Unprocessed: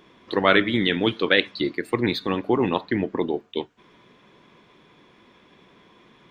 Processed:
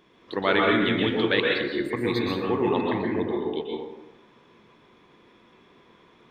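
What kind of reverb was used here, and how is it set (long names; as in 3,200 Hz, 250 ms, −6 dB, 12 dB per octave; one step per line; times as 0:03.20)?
dense smooth reverb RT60 1.1 s, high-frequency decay 0.45×, pre-delay 110 ms, DRR −2 dB
level −6 dB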